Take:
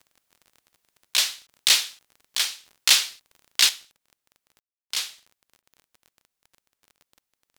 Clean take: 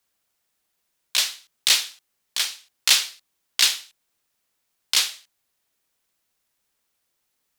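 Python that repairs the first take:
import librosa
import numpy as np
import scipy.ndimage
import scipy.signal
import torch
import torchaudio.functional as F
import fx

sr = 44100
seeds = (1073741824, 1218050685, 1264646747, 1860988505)

y = fx.fix_declick_ar(x, sr, threshold=6.5)
y = fx.fix_ambience(y, sr, seeds[0], print_start_s=7.04, print_end_s=7.54, start_s=4.6, end_s=4.9)
y = fx.fix_interpolate(y, sr, at_s=(1.47, 5.62), length_ms=11.0)
y = fx.gain(y, sr, db=fx.steps((0.0, 0.0), (3.69, 8.0)))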